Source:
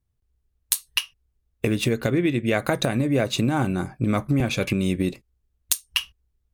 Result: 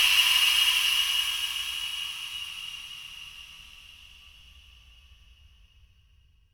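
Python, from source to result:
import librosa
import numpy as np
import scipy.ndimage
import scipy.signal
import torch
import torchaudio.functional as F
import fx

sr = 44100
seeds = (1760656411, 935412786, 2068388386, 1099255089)

y = fx.paulstretch(x, sr, seeds[0], factor=39.0, window_s=0.1, from_s=5.97)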